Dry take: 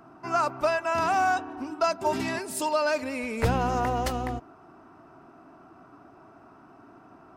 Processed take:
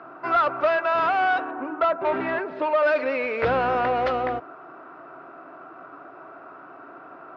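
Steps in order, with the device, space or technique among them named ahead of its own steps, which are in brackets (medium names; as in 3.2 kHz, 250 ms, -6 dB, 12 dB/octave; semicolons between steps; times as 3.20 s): 1.51–2.83 s: low-pass 1.8 kHz 12 dB/octave; overdrive pedal into a guitar cabinet (overdrive pedal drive 18 dB, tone 2.1 kHz, clips at -14.5 dBFS; cabinet simulation 77–3800 Hz, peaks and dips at 97 Hz -9 dB, 220 Hz -9 dB, 530 Hz +6 dB, 870 Hz -5 dB, 1.4 kHz +4 dB, 3 kHz -3 dB)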